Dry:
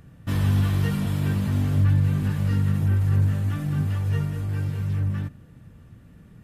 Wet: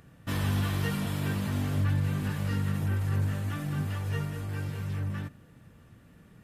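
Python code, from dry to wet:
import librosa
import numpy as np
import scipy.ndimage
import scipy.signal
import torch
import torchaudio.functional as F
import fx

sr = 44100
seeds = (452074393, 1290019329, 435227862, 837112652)

y = fx.low_shelf(x, sr, hz=240.0, db=-9.5)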